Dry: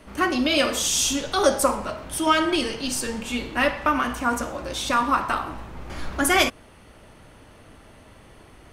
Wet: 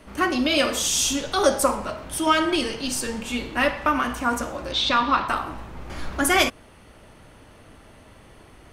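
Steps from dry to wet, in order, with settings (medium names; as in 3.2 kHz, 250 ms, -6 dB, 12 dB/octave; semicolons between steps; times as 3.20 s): 4.72–5.28 s: resonant low-pass 3.9 kHz, resonance Q 2.8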